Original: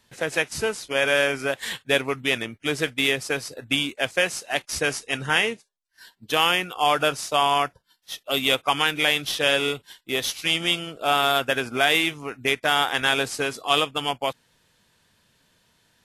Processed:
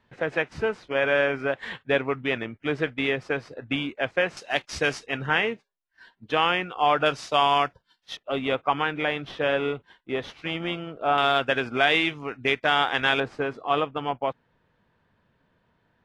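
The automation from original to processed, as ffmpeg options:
-af "asetnsamples=n=441:p=0,asendcmd='4.37 lowpass f 4300;5.06 lowpass f 2300;7.06 lowpass f 4100;8.17 lowpass f 1600;11.18 lowpass f 3300;13.2 lowpass f 1500',lowpass=2k"

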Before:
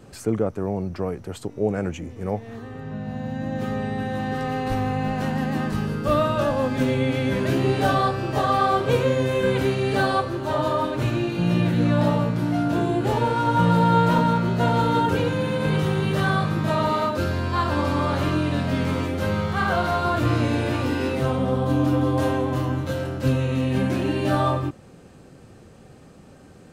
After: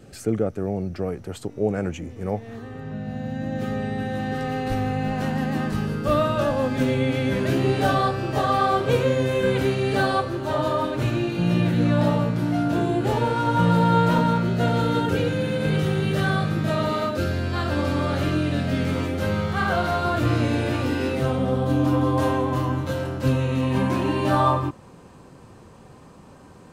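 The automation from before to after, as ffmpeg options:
-af "asetnsamples=n=441:p=0,asendcmd='1.08 equalizer g -3.5;2.92 equalizer g -10.5;5.12 equalizer g -3;14.43 equalizer g -13;18.95 equalizer g -4.5;21.85 equalizer g 5.5;23.63 equalizer g 14',equalizer=f=1k:t=o:w=0.28:g=-14"

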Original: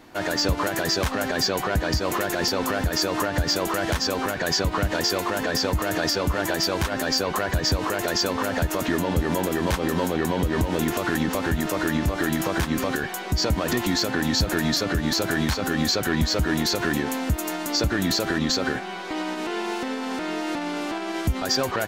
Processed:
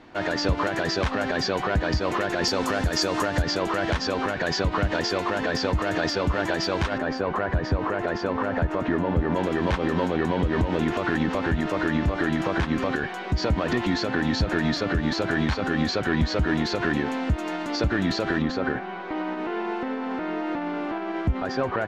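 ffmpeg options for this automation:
-af "asetnsamples=n=441:p=0,asendcmd='2.44 lowpass f 7600;3.42 lowpass f 4000;6.98 lowpass f 1800;9.36 lowpass f 3200;18.42 lowpass f 1900',lowpass=3.9k"

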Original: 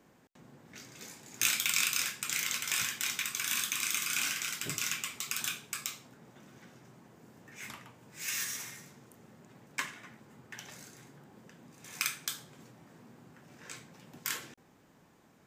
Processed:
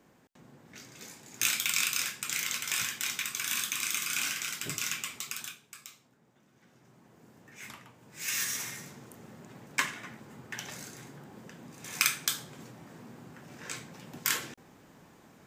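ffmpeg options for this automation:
-af "volume=17.5dB,afade=t=out:st=5.16:d=0.4:silence=0.281838,afade=t=in:st=6.53:d=0.68:silence=0.334965,afade=t=in:st=7.96:d=0.9:silence=0.421697"

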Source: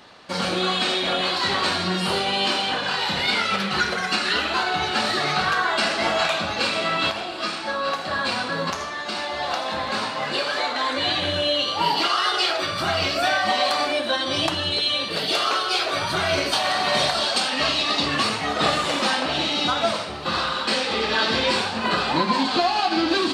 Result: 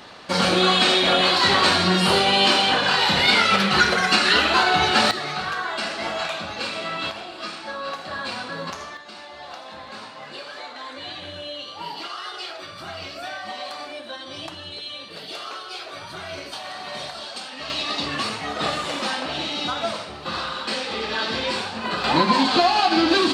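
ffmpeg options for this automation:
-af "asetnsamples=n=441:p=0,asendcmd='5.11 volume volume -5.5dB;8.97 volume volume -12dB;17.7 volume volume -4dB;22.04 volume volume 3dB',volume=5dB"

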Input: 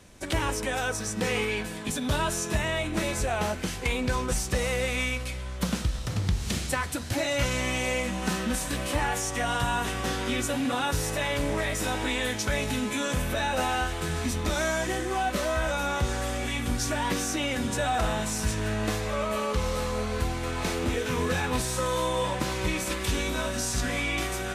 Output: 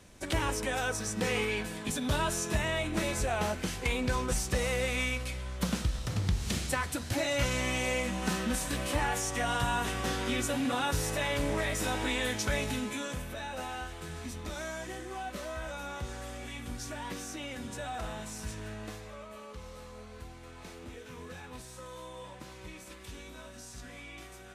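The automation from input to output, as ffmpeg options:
-af "volume=-3dB,afade=t=out:st=12.53:d=0.73:silence=0.375837,afade=t=out:st=18.55:d=0.72:silence=0.473151"

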